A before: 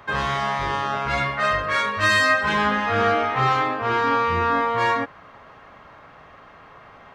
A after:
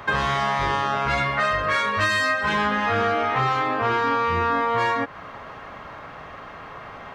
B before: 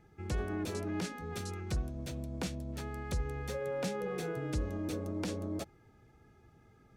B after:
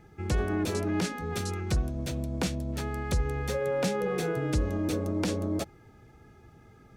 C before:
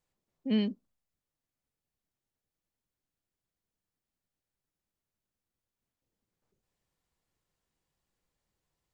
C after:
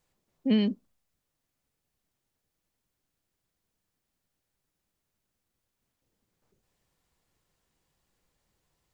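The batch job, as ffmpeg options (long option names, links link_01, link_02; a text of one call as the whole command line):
ffmpeg -i in.wav -af "acompressor=threshold=-27dB:ratio=6,volume=7.5dB" out.wav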